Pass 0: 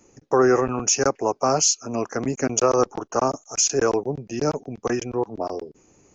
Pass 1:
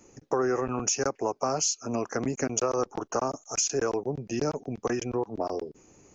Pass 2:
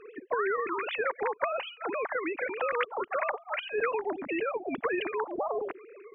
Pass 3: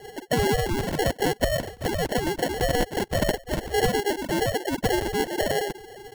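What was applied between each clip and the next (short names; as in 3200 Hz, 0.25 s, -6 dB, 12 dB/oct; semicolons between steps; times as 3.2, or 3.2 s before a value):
compressor 3:1, threshold -26 dBFS, peak gain reduction 10 dB
sine-wave speech; spectral compressor 2:1
sample-and-hold 36×; gain +6.5 dB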